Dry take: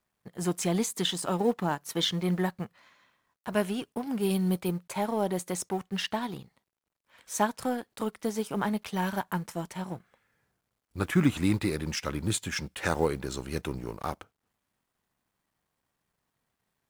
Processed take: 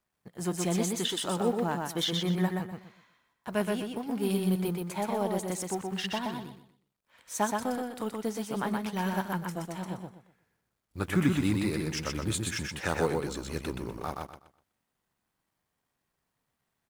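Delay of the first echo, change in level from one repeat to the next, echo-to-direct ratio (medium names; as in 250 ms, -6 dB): 124 ms, -11.5 dB, -3.0 dB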